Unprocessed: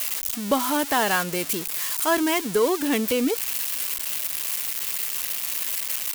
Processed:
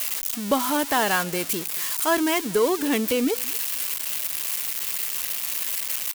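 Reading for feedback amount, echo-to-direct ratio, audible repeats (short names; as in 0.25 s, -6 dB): no steady repeat, -23.5 dB, 1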